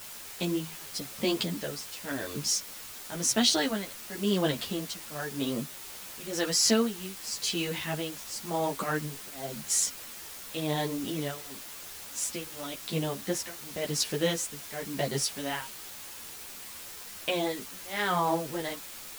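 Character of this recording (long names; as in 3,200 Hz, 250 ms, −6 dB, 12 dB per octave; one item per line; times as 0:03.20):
tremolo triangle 0.94 Hz, depth 100%
a quantiser's noise floor 8 bits, dither triangular
a shimmering, thickened sound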